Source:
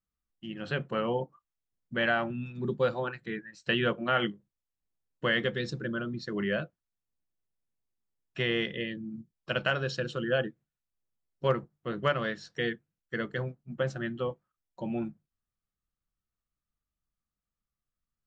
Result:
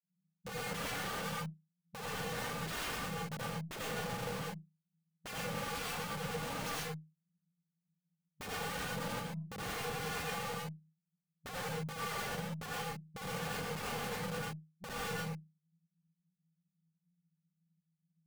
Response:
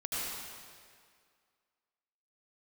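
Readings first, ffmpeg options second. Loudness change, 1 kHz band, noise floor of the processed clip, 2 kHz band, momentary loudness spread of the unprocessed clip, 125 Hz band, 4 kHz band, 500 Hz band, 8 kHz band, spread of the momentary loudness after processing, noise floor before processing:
−8.0 dB, −3.5 dB, below −85 dBFS, −8.5 dB, 12 LU, −6.0 dB, −5.5 dB, −11.5 dB, can't be measured, 8 LU, below −85 dBFS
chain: -filter_complex "[0:a]asuperpass=centerf=170:order=12:qfactor=5.9,aemphasis=mode=reproduction:type=riaa,aeval=exprs='(mod(398*val(0)+1,2)-1)/398':channel_layout=same,aeval=exprs='0.00266*(cos(1*acos(clip(val(0)/0.00266,-1,1)))-cos(1*PI/2))+0.0000668*(cos(8*acos(clip(val(0)/0.00266,-1,1)))-cos(8*PI/2))':channel_layout=same[link_01];[1:a]atrim=start_sample=2205,atrim=end_sample=6615[link_02];[link_01][link_02]afir=irnorm=-1:irlink=0,volume=15.5dB"

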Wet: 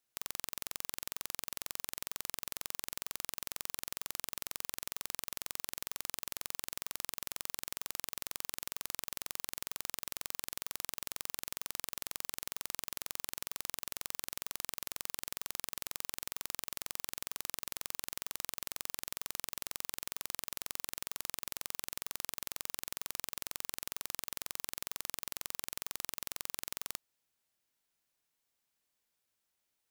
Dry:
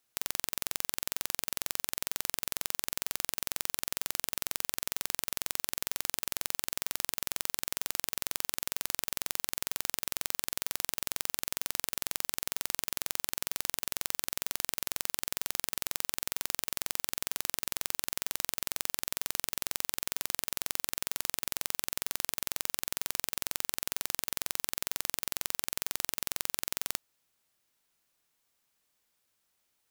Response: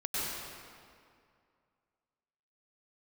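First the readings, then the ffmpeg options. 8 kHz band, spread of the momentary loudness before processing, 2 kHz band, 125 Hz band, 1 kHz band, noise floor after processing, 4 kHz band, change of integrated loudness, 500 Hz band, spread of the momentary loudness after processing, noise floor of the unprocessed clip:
−6.5 dB, 1 LU, −6.5 dB, −6.5 dB, −7.0 dB, −84 dBFS, −6.5 dB, −6.5 dB, −6.5 dB, 1 LU, −77 dBFS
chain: -af "equalizer=frequency=1200:width_type=o:width=0.21:gain=-2.5,volume=-6.5dB"

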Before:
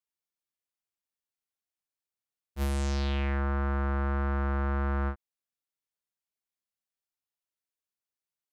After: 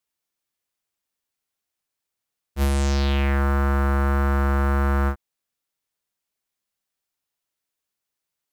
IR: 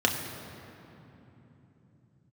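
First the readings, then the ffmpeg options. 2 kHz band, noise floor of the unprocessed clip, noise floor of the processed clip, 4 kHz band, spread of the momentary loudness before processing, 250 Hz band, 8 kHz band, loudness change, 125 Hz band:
+8.5 dB, below −85 dBFS, −84 dBFS, +8.5 dB, 6 LU, +8.5 dB, +9.0 dB, +8.5 dB, can't be measured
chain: -af "acrusher=bits=7:mode=log:mix=0:aa=0.000001,volume=8.5dB"

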